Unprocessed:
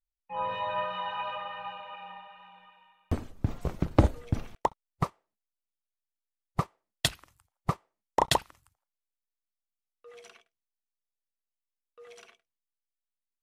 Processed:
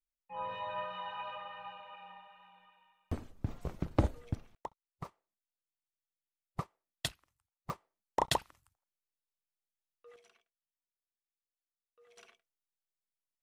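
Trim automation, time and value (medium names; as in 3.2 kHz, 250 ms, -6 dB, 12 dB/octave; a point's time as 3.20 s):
-7.5 dB
from 4.35 s -16 dB
from 5.05 s -9.5 dB
from 7.12 s -17 dB
from 7.70 s -6 dB
from 10.16 s -14 dB
from 12.17 s -5.5 dB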